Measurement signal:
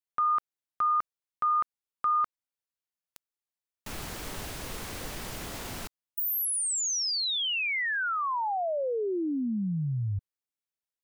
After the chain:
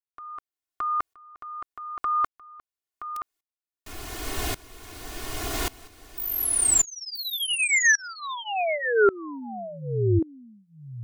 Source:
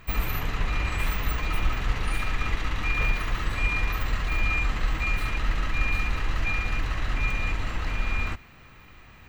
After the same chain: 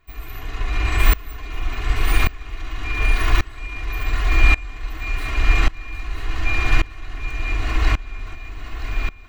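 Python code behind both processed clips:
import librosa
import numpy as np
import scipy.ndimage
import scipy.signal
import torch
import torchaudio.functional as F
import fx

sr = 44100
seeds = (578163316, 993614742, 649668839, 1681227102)

p1 = x + 0.95 * np.pad(x, (int(2.8 * sr / 1000.0), 0))[:len(x)]
p2 = p1 + fx.echo_single(p1, sr, ms=973, db=-6.5, dry=0)
p3 = fx.tremolo_decay(p2, sr, direction='swelling', hz=0.88, depth_db=24)
y = p3 * librosa.db_to_amplitude(8.5)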